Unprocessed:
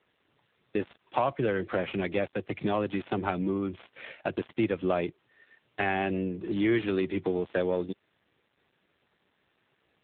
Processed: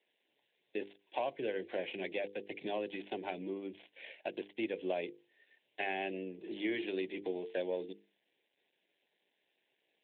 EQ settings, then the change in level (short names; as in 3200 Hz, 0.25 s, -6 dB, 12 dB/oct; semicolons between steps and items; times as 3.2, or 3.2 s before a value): HPF 390 Hz 12 dB/oct; notches 50/100/150/200/250/300/350/400/450/500 Hz; fixed phaser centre 3000 Hz, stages 4; -3.5 dB